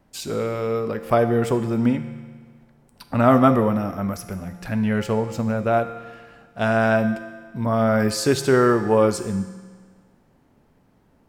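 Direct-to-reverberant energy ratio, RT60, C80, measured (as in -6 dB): 8.0 dB, 1.6 s, 11.5 dB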